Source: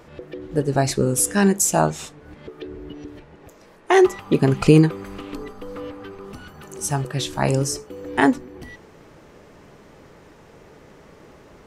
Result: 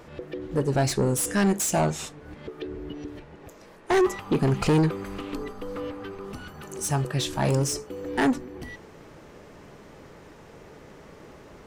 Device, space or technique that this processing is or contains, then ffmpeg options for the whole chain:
saturation between pre-emphasis and de-emphasis: -af "highshelf=f=3k:g=8,asoftclip=type=tanh:threshold=-16.5dB,highshelf=f=3k:g=-8"

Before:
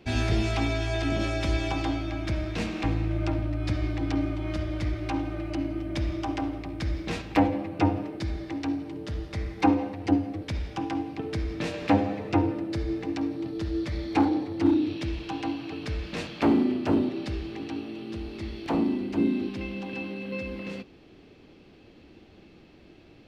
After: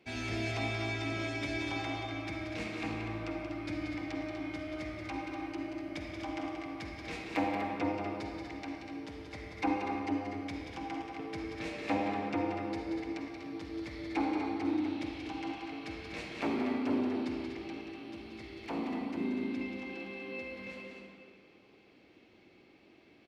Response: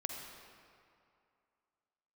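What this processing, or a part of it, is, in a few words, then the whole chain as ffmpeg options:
stadium PA: -filter_complex "[0:a]highpass=f=250:p=1,equalizer=f=2.2k:t=o:w=0.21:g=8,aecho=1:1:180.8|244.9:0.447|0.398[a];[1:a]atrim=start_sample=2205[b];[a][b]afir=irnorm=-1:irlink=0,volume=-8dB"

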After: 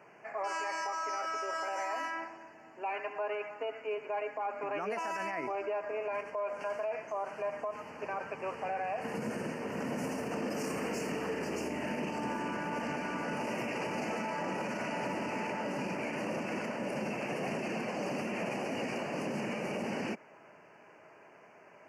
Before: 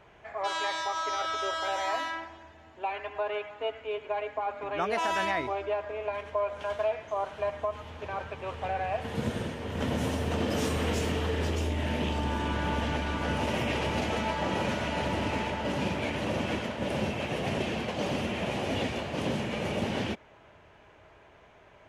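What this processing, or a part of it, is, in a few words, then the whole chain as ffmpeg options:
PA system with an anti-feedback notch: -af "highpass=f=160:w=0.5412,highpass=f=160:w=1.3066,asuperstop=centerf=3600:order=8:qfactor=2.2,alimiter=level_in=3.5dB:limit=-24dB:level=0:latency=1:release=41,volume=-3.5dB"

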